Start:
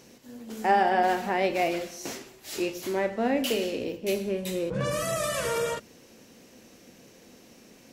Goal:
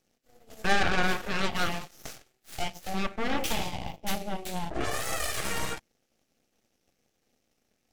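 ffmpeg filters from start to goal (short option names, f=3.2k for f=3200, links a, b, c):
-af "aeval=exprs='0.282*(cos(1*acos(clip(val(0)/0.282,-1,1)))-cos(1*PI/2))+0.0891*(cos(3*acos(clip(val(0)/0.282,-1,1)))-cos(3*PI/2))+0.0501*(cos(4*acos(clip(val(0)/0.282,-1,1)))-cos(4*PI/2))+0.0355*(cos(8*acos(clip(val(0)/0.282,-1,1)))-cos(8*PI/2))':c=same,bandreject=f=990:w=5.2"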